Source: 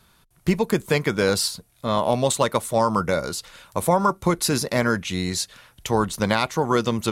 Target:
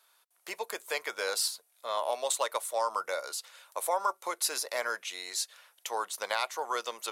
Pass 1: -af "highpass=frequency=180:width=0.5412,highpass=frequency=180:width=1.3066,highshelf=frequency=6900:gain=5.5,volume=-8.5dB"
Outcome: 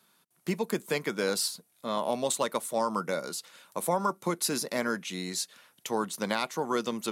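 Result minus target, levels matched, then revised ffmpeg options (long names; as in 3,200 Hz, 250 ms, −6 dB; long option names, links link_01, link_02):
250 Hz band +19.0 dB
-af "highpass=frequency=540:width=0.5412,highpass=frequency=540:width=1.3066,highshelf=frequency=6900:gain=5.5,volume=-8.5dB"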